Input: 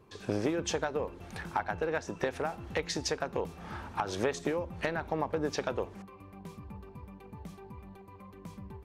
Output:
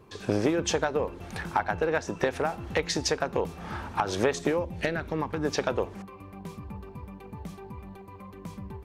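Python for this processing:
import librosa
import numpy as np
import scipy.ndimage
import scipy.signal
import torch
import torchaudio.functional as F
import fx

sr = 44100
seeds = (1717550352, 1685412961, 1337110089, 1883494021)

y = fx.peak_eq(x, sr, hz=fx.line((4.64, 1400.0), (5.44, 500.0)), db=-13.0, octaves=0.6, at=(4.64, 5.44), fade=0.02)
y = y * librosa.db_to_amplitude(5.5)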